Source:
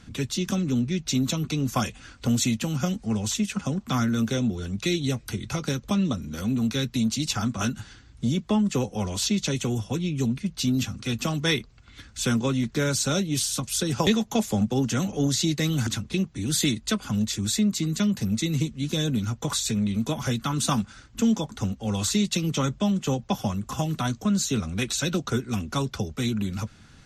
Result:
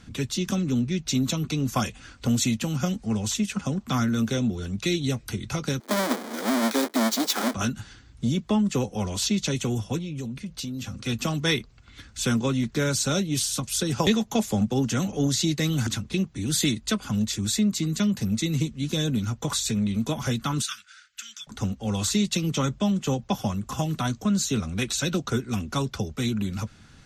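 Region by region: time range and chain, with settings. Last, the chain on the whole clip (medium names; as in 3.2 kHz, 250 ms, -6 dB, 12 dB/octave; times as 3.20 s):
5.80–7.54 s: square wave that keeps the level + steep high-pass 230 Hz 48 dB/octave + band-stop 2.7 kHz, Q 5.5
9.98–11.04 s: peaking EQ 530 Hz +8 dB 0.21 oct + compression 10:1, threshold -29 dBFS
20.62–21.47 s: elliptic high-pass 1.4 kHz + treble shelf 8.2 kHz -5.5 dB
whole clip: none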